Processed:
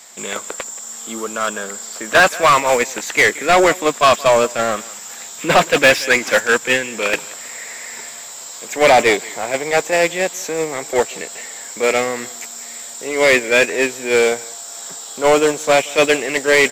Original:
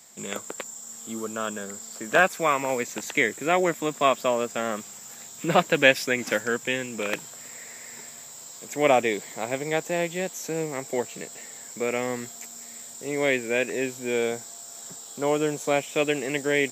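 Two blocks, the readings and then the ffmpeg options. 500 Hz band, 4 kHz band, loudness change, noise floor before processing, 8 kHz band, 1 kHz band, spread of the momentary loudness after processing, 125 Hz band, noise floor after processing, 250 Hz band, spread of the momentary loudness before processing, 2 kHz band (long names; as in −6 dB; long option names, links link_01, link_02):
+9.5 dB, +11.0 dB, +10.0 dB, −43 dBFS, +10.0 dB, +10.5 dB, 17 LU, +3.5 dB, −34 dBFS, +5.0 dB, 17 LU, +10.5 dB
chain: -filter_complex "[0:a]aecho=1:1:179:0.0794,asplit=2[link_01][link_02];[link_02]highpass=frequency=720:poles=1,volume=27dB,asoftclip=type=tanh:threshold=-2dB[link_03];[link_01][link_03]amix=inputs=2:normalize=0,lowpass=frequency=4900:poles=1,volume=-6dB,agate=range=-7dB:threshold=-13dB:ratio=16:detection=peak"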